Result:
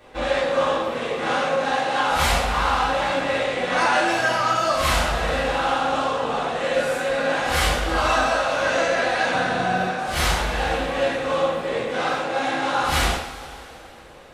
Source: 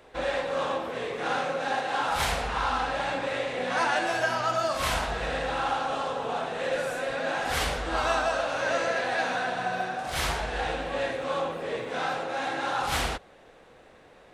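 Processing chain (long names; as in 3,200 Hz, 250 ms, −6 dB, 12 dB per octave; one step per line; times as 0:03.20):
0:09.32–0:09.88: low-shelf EQ 320 Hz +7.5 dB
coupled-rooms reverb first 0.44 s, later 3.3 s, from −18 dB, DRR −6 dB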